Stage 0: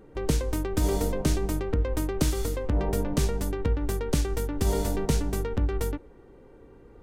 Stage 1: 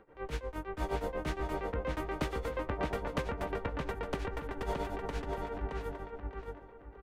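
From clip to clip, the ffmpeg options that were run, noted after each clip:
-filter_complex "[0:a]acrossover=split=570 2900:gain=0.224 1 0.0891[a][b][c];[a][b][c]amix=inputs=3:normalize=0,tremolo=f=8.5:d=0.86,asplit=2[d][e];[e]adelay=620,lowpass=f=3.9k:p=1,volume=-3dB,asplit=2[f][g];[g]adelay=620,lowpass=f=3.9k:p=1,volume=0.3,asplit=2[h][i];[i]adelay=620,lowpass=f=3.9k:p=1,volume=0.3,asplit=2[j][k];[k]adelay=620,lowpass=f=3.9k:p=1,volume=0.3[l];[d][f][h][j][l]amix=inputs=5:normalize=0,volume=2.5dB"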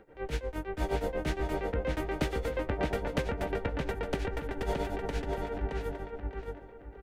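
-af "equalizer=f=1.1k:t=o:w=0.38:g=-10,volume=4dB"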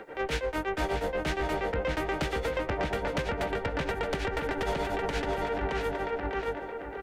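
-filter_complex "[0:a]acrossover=split=170[a][b];[b]acompressor=threshold=-40dB:ratio=6[c];[a][c]amix=inputs=2:normalize=0,asplit=2[d][e];[e]highpass=f=720:p=1,volume=21dB,asoftclip=type=tanh:threshold=-21.5dB[f];[d][f]amix=inputs=2:normalize=0,lowpass=f=5.7k:p=1,volume=-6dB,volume=2.5dB"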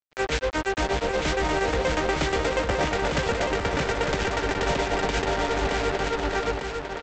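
-af "aresample=16000,acrusher=bits=4:mix=0:aa=0.5,aresample=44100,aecho=1:1:901:0.531,volume=4dB"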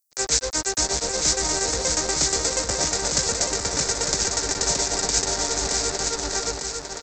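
-af "aexciter=amount=15.3:drive=4.9:freq=4.6k,volume=-4dB"

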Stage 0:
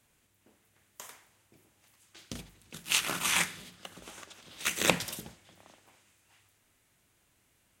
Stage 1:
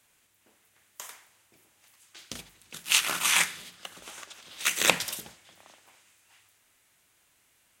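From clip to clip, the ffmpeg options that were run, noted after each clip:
-af "lowshelf=f=460:g=-11.5,volume=5dB"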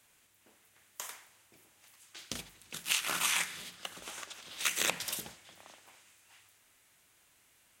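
-af "acompressor=threshold=-27dB:ratio=12"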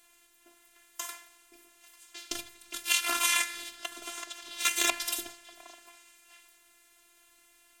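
-af "afftfilt=real='hypot(re,im)*cos(PI*b)':imag='0':win_size=512:overlap=0.75,volume=7.5dB"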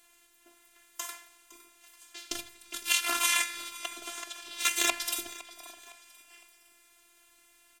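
-af "aecho=1:1:510|1020|1530:0.119|0.0452|0.0172"

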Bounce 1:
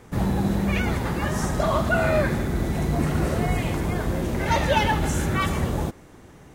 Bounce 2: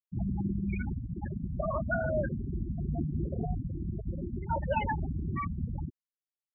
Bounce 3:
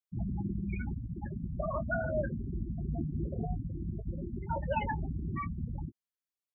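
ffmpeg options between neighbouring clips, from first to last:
-af "afftfilt=real='re*gte(hypot(re,im),0.251)':imag='im*gte(hypot(re,im),0.251)':win_size=1024:overlap=0.75,volume=-8dB"
-filter_complex "[0:a]asplit=2[a][b];[b]adelay=18,volume=-13dB[c];[a][c]amix=inputs=2:normalize=0,volume=-2.5dB"

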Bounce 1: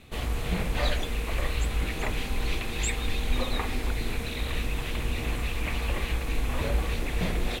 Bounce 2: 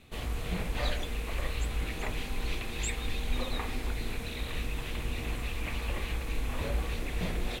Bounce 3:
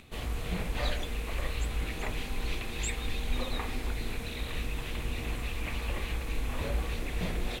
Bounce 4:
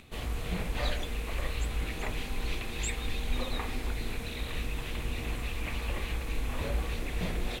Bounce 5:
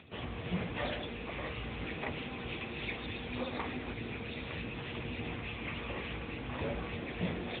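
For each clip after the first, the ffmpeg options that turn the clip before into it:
-af "bandreject=f=65.79:t=h:w=4,bandreject=f=131.58:t=h:w=4,bandreject=f=197.37:t=h:w=4,bandreject=f=263.16:t=h:w=4,bandreject=f=328.95:t=h:w=4,bandreject=f=394.74:t=h:w=4,bandreject=f=460.53:t=h:w=4,bandreject=f=526.32:t=h:w=4,bandreject=f=592.11:t=h:w=4,bandreject=f=657.9:t=h:w=4,bandreject=f=723.69:t=h:w=4,bandreject=f=789.48:t=h:w=4,bandreject=f=855.27:t=h:w=4,bandreject=f=921.06:t=h:w=4,bandreject=f=986.85:t=h:w=4,bandreject=f=1.05264k:t=h:w=4,bandreject=f=1.11843k:t=h:w=4,bandreject=f=1.18422k:t=h:w=4,bandreject=f=1.25001k:t=h:w=4,bandreject=f=1.3158k:t=h:w=4,bandreject=f=1.38159k:t=h:w=4,bandreject=f=1.44738k:t=h:w=4,bandreject=f=1.51317k:t=h:w=4,bandreject=f=1.57896k:t=h:w=4,bandreject=f=1.64475k:t=h:w=4,bandreject=f=1.71054k:t=h:w=4,bandreject=f=1.77633k:t=h:w=4,bandreject=f=1.84212k:t=h:w=4,bandreject=f=1.90791k:t=h:w=4,bandreject=f=1.9737k:t=h:w=4,bandreject=f=2.03949k:t=h:w=4,bandreject=f=2.10528k:t=h:w=4,bandreject=f=2.17107k:t=h:w=4,bandreject=f=2.23686k:t=h:w=4,bandreject=f=2.30265k:t=h:w=4,volume=-4.5dB"
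-af "acompressor=mode=upward:threshold=-50dB:ratio=2.5"
-af anull
-af "volume=1dB" -ar 8000 -c:a libopencore_amrnb -b:a 10200

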